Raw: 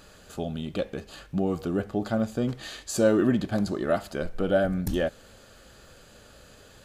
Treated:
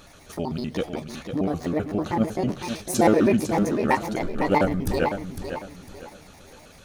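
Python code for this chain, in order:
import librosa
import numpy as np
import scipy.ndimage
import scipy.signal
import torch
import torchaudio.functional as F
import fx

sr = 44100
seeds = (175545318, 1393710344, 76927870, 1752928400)

p1 = fx.pitch_trill(x, sr, semitones=7.5, every_ms=64)
p2 = fx.level_steps(p1, sr, step_db=12)
p3 = p1 + F.gain(torch.from_numpy(p2), -1.0).numpy()
p4 = fx.formant_shift(p3, sr, semitones=-2)
y = fx.echo_warbled(p4, sr, ms=503, feedback_pct=32, rate_hz=2.8, cents=83, wet_db=-8.5)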